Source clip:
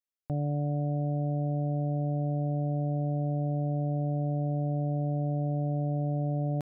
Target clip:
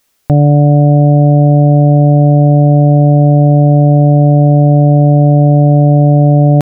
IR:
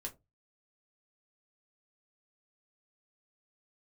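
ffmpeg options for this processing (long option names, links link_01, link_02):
-af "alimiter=level_in=35dB:limit=-1dB:release=50:level=0:latency=1,volume=-1dB"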